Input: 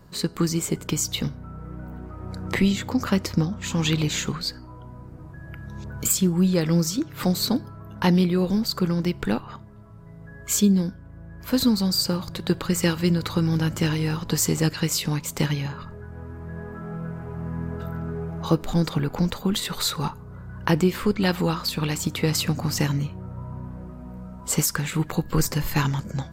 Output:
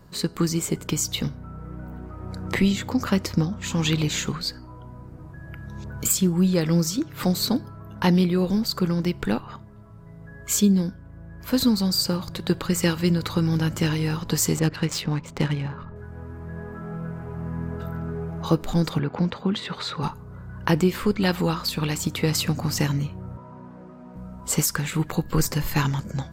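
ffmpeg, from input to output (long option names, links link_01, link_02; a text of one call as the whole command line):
ffmpeg -i in.wav -filter_complex "[0:a]asettb=1/sr,asplit=3[link_01][link_02][link_03];[link_01]atrim=end=14.594[link_04];[link_02]atrim=start=14.59:end=15.96,asetpts=PTS-STARTPTS,afade=type=in:duration=0.004:curve=qsin,afade=type=out:start_time=1.366:duration=0.004:curve=qsin,adynamicsmooth=sensitivity=3:basefreq=1900[link_05];[link_03]atrim=start=15.956[link_06];[link_04][link_05]acrossfade=duration=0.004:curve1=hsin:curve2=qsin[link_07];[link_07][link_06]acrossfade=duration=0.004:curve1=qsin:curve2=hsin,asettb=1/sr,asplit=3[link_08][link_09][link_10];[link_08]atrim=end=18.994[link_11];[link_09]atrim=start=18.99:end=20.03,asetpts=PTS-STARTPTS,afade=type=in:duration=0.004:curve=qsin,afade=type=out:start_time=1.036:duration=0.004:curve=qsin,highpass=100,lowpass=3300[link_12];[link_10]atrim=start=20.026[link_13];[link_11][link_12]acrossfade=duration=0.004:curve1=hsin:curve2=qsin[link_14];[link_14][link_13]acrossfade=duration=0.004:curve1=qsin:curve2=hsin,asettb=1/sr,asplit=3[link_15][link_16][link_17];[link_15]atrim=end=23.374[link_18];[link_16]atrim=start=23.37:end=24.16,asetpts=PTS-STARTPTS,afade=type=in:duration=0.004:curve=qsin,afade=type=out:start_time=0.786:duration=0.004:curve=qsin,acrossover=split=180 7500:gain=0.0708 1 0.178[link_19][link_20][link_21];[link_19][link_20][link_21]amix=inputs=3:normalize=0[link_22];[link_17]atrim=start=24.156[link_23];[link_18][link_22]acrossfade=duration=0.004:curve1=hsin:curve2=qsin[link_24];[link_24][link_23]acrossfade=duration=0.004:curve1=qsin:curve2=hsin" out.wav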